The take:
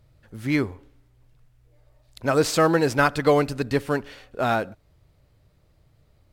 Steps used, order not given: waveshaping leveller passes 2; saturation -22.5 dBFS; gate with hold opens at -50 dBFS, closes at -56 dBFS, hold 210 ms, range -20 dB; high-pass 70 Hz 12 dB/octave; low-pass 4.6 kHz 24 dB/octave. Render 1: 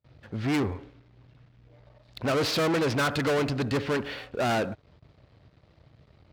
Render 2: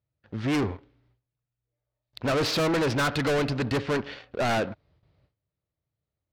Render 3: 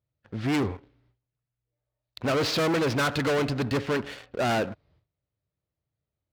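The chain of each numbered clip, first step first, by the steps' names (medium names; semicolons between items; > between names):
gate with hold > low-pass > saturation > waveshaping leveller > high-pass; high-pass > gate with hold > waveshaping leveller > low-pass > saturation; low-pass > waveshaping leveller > saturation > high-pass > gate with hold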